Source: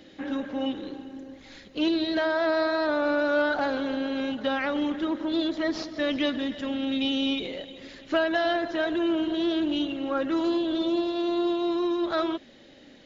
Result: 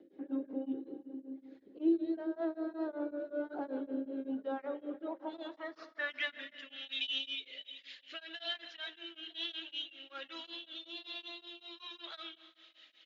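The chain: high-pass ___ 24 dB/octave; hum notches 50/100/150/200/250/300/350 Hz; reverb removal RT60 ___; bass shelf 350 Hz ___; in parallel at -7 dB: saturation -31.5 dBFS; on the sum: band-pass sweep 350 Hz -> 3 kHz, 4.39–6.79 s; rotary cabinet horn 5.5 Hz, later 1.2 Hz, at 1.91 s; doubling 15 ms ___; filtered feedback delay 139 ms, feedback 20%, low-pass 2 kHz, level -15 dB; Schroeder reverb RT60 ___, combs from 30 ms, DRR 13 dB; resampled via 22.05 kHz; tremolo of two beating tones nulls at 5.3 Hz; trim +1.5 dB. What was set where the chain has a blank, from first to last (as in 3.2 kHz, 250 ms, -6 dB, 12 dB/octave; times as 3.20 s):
62 Hz, 0.6 s, -6 dB, -12 dB, 2.4 s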